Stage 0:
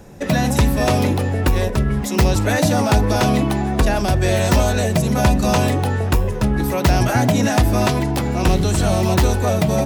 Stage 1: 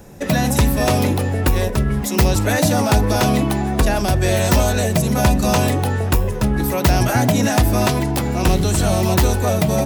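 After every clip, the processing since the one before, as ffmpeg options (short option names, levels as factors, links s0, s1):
-af "highshelf=f=9700:g=8.5"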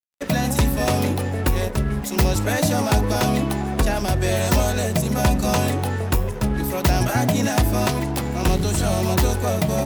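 -af "aeval=exprs='sgn(val(0))*max(abs(val(0))-0.0266,0)':c=same,volume=0.75"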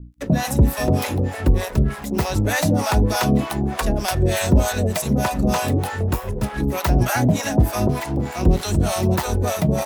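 -filter_complex "[0:a]acrossover=split=270|1600[s0][s1][s2];[s2]alimiter=limit=0.133:level=0:latency=1:release=281[s3];[s0][s1][s3]amix=inputs=3:normalize=0,aeval=exprs='val(0)+0.01*(sin(2*PI*60*n/s)+sin(2*PI*2*60*n/s)/2+sin(2*PI*3*60*n/s)/3+sin(2*PI*4*60*n/s)/4+sin(2*PI*5*60*n/s)/5)':c=same,acrossover=split=600[s4][s5];[s4]aeval=exprs='val(0)*(1-1/2+1/2*cos(2*PI*3.3*n/s))':c=same[s6];[s5]aeval=exprs='val(0)*(1-1/2-1/2*cos(2*PI*3.3*n/s))':c=same[s7];[s6][s7]amix=inputs=2:normalize=0,volume=1.88"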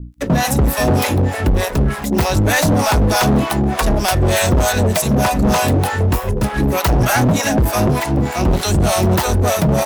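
-af "asoftclip=type=hard:threshold=0.126,volume=2.37"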